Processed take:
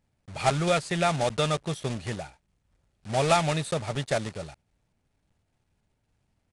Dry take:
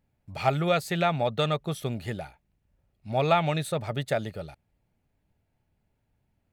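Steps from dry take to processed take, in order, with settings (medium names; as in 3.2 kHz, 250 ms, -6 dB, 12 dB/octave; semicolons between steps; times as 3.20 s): block-companded coder 3-bit; resampled via 22.05 kHz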